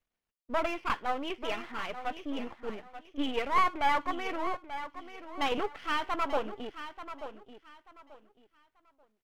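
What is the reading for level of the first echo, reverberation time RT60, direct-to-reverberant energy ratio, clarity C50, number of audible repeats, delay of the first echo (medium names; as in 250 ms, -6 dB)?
-11.5 dB, no reverb, no reverb, no reverb, 2, 886 ms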